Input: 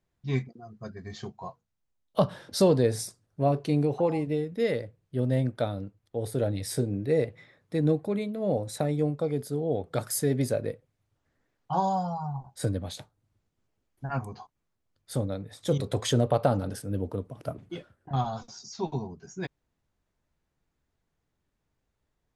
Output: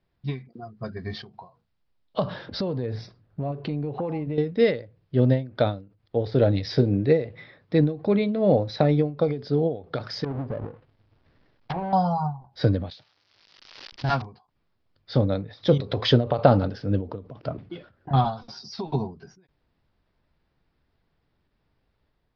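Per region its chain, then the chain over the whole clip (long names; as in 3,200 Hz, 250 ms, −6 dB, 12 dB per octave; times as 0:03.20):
0:02.46–0:04.38: low-pass filter 6,400 Hz + bass and treble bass +4 dB, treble −10 dB + downward compressor 5 to 1, threshold −34 dBFS
0:10.24–0:11.93: each half-wave held at its own peak + treble cut that deepens with the level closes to 830 Hz, closed at −23.5 dBFS + downward compressor 8 to 1, threshold −35 dBFS
0:12.90–0:14.22: spike at every zero crossing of −27 dBFS + noise gate −38 dBFS, range −23 dB + background raised ahead of every attack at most 43 dB per second
whole clip: automatic gain control gain up to 3 dB; Butterworth low-pass 5,200 Hz 72 dB per octave; every ending faded ahead of time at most 150 dB per second; level +5 dB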